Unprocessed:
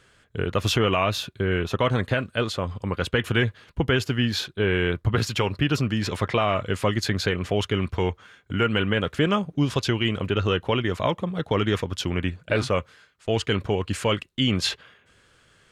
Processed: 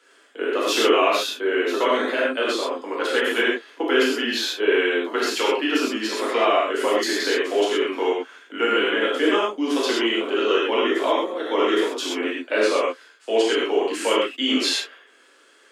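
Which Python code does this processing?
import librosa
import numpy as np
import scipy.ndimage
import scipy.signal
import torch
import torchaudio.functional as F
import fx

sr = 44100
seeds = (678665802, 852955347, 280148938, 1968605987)

y = scipy.signal.sosfilt(scipy.signal.butter(12, 260.0, 'highpass', fs=sr, output='sos'), x)
y = fx.rev_gated(y, sr, seeds[0], gate_ms=150, shape='flat', drr_db=-6.5)
y = y * librosa.db_to_amplitude(-2.5)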